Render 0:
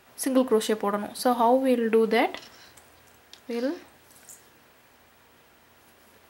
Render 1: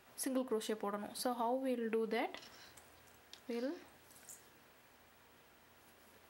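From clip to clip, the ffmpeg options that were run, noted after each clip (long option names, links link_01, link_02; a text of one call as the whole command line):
ffmpeg -i in.wav -af "acompressor=threshold=-33dB:ratio=2,volume=-7.5dB" out.wav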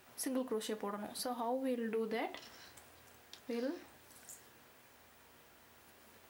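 ffmpeg -i in.wav -af "alimiter=level_in=6.5dB:limit=-24dB:level=0:latency=1:release=101,volume=-6.5dB,flanger=delay=8:depth=6.4:regen=-66:speed=0.64:shape=sinusoidal,acrusher=bits=11:mix=0:aa=0.000001,volume=6dB" out.wav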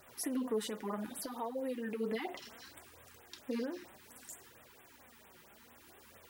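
ffmpeg -i in.wav -filter_complex "[0:a]asplit=2[link_01][link_02];[link_02]alimiter=level_in=11.5dB:limit=-24dB:level=0:latency=1:release=22,volume=-11.5dB,volume=2.5dB[link_03];[link_01][link_03]amix=inputs=2:normalize=0,flanger=delay=1.5:depth=4.2:regen=42:speed=0.65:shape=triangular,afftfilt=real='re*(1-between(b*sr/1024,540*pow(5600/540,0.5+0.5*sin(2*PI*4.4*pts/sr))/1.41,540*pow(5600/540,0.5+0.5*sin(2*PI*4.4*pts/sr))*1.41))':imag='im*(1-between(b*sr/1024,540*pow(5600/540,0.5+0.5*sin(2*PI*4.4*pts/sr))/1.41,540*pow(5600/540,0.5+0.5*sin(2*PI*4.4*pts/sr))*1.41))':win_size=1024:overlap=0.75" out.wav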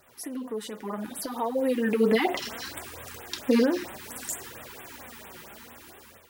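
ffmpeg -i in.wav -af "dynaudnorm=framelen=610:gausssize=5:maxgain=16dB" out.wav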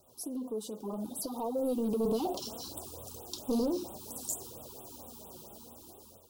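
ffmpeg -i in.wav -filter_complex "[0:a]acrossover=split=5600[link_01][link_02];[link_01]asoftclip=type=tanh:threshold=-24dB[link_03];[link_03][link_02]amix=inputs=2:normalize=0,asuperstop=centerf=1900:order=4:qfactor=0.57,volume=-2dB" out.wav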